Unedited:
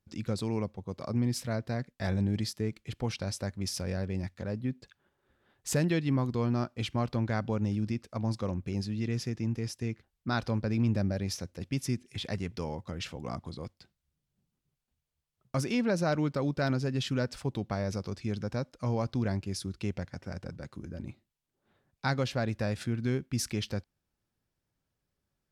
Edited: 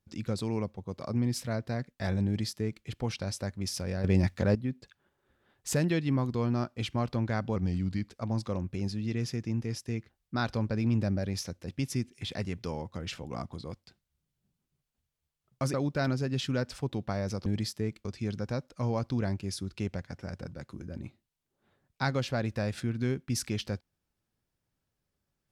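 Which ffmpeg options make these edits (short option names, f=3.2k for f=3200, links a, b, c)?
-filter_complex "[0:a]asplit=8[a][b][c][d][e][f][g][h];[a]atrim=end=4.042[i];[b]atrim=start=4.038:end=4.552,asetpts=PTS-STARTPTS,volume=9.5dB[j];[c]atrim=start=4.548:end=7.564[k];[d]atrim=start=7.56:end=8.05,asetpts=PTS-STARTPTS,asetrate=38808,aresample=44100[l];[e]atrim=start=8.046:end=15.672[m];[f]atrim=start=16.358:end=18.082[n];[g]atrim=start=2.258:end=2.852[o];[h]atrim=start=18.078[p];[i][j]acrossfade=d=0.004:c1=hsin:c2=hsin[q];[q][k]acrossfade=d=0.004:c1=hsin:c2=hsin[r];[r][l]acrossfade=d=0.004:c1=hsin:c2=hsin[s];[s][m]acrossfade=d=0.004:c1=hsin:c2=hsin[t];[t][n]acrossfade=d=0.004:c1=hsin:c2=hsin[u];[u][o]acrossfade=d=0.004:c1=hsin:c2=hsin[v];[v][p]acrossfade=d=0.004:c1=hsin:c2=hsin"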